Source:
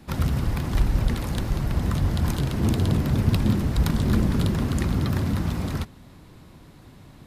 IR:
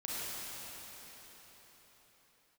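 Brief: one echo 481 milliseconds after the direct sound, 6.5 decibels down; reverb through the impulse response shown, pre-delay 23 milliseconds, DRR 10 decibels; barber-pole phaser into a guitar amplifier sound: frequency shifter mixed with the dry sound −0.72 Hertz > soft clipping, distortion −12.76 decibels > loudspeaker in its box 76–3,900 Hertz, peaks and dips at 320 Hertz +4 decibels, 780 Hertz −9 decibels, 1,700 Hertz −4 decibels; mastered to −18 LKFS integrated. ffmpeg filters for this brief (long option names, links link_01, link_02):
-filter_complex "[0:a]aecho=1:1:481:0.473,asplit=2[link_01][link_02];[1:a]atrim=start_sample=2205,adelay=23[link_03];[link_02][link_03]afir=irnorm=-1:irlink=0,volume=-14dB[link_04];[link_01][link_04]amix=inputs=2:normalize=0,asplit=2[link_05][link_06];[link_06]afreqshift=-0.72[link_07];[link_05][link_07]amix=inputs=2:normalize=1,asoftclip=threshold=-21.5dB,highpass=76,equalizer=frequency=320:width_type=q:width=4:gain=4,equalizer=frequency=780:width_type=q:width=4:gain=-9,equalizer=frequency=1700:width_type=q:width=4:gain=-4,lowpass=frequency=3900:width=0.5412,lowpass=frequency=3900:width=1.3066,volume=12.5dB"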